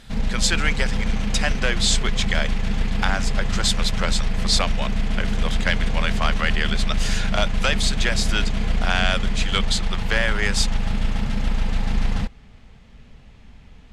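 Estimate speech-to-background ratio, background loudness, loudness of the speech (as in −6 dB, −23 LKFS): 1.5 dB, −26.5 LKFS, −25.0 LKFS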